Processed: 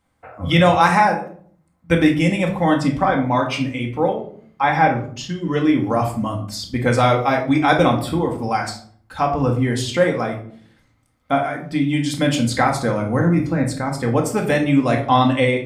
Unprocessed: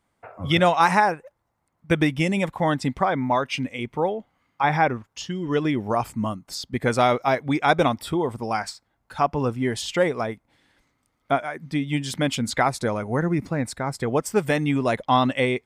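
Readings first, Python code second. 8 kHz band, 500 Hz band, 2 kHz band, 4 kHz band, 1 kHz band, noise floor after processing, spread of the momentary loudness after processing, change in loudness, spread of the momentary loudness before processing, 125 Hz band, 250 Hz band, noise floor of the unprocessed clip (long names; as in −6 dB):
+3.0 dB, +4.0 dB, +4.0 dB, +3.5 dB, +4.0 dB, −61 dBFS, 10 LU, +5.0 dB, 9 LU, +6.5 dB, +6.5 dB, −74 dBFS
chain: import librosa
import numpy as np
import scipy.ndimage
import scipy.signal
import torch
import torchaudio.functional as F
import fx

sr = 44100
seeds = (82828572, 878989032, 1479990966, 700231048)

y = fx.peak_eq(x, sr, hz=81.0, db=12.0, octaves=0.3)
y = fx.room_shoebox(y, sr, seeds[0], volume_m3=610.0, walls='furnished', distance_m=2.1)
y = F.gain(torch.from_numpy(y), 1.0).numpy()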